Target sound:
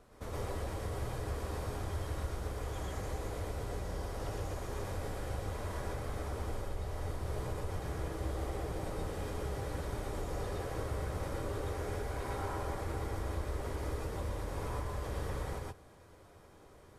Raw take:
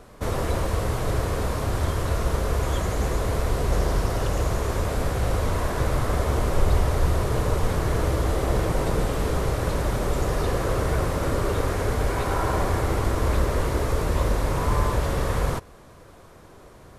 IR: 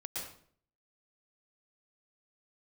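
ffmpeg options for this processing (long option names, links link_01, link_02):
-filter_complex "[0:a]acompressor=threshold=-24dB:ratio=6[link_01];[1:a]atrim=start_sample=2205,afade=type=out:start_time=0.18:duration=0.01,atrim=end_sample=8379,asetrate=42777,aresample=44100[link_02];[link_01][link_02]afir=irnorm=-1:irlink=0,volume=-8.5dB"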